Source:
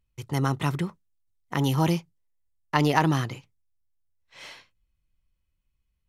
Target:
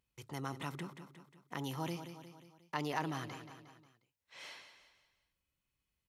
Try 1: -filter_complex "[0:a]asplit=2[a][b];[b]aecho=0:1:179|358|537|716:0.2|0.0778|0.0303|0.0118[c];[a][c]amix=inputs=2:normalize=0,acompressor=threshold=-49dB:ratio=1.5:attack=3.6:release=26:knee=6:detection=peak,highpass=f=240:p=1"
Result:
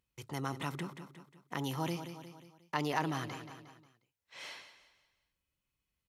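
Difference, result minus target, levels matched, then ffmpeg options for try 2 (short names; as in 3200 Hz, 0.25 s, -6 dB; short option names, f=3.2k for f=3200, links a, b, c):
compressor: peak gain reduction -3.5 dB
-filter_complex "[0:a]asplit=2[a][b];[b]aecho=0:1:179|358|537|716:0.2|0.0778|0.0303|0.0118[c];[a][c]amix=inputs=2:normalize=0,acompressor=threshold=-60dB:ratio=1.5:attack=3.6:release=26:knee=6:detection=peak,highpass=f=240:p=1"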